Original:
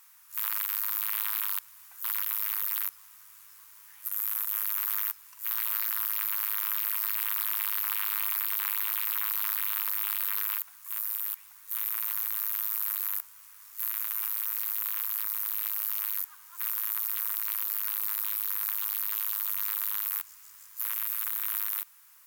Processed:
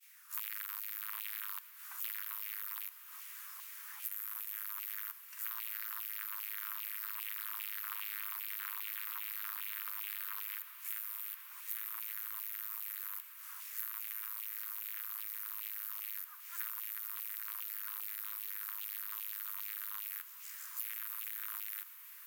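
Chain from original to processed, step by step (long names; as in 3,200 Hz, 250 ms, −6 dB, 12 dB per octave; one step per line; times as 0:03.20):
downward compressor 10 to 1, threshold −40 dBFS, peak gain reduction 15.5 dB
downward expander −51 dBFS
auto-filter high-pass saw down 2.5 Hz 940–2,700 Hz
on a send: feedback delay with all-pass diffusion 1,080 ms, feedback 72%, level −13.5 dB
on the sum: level +2.5 dB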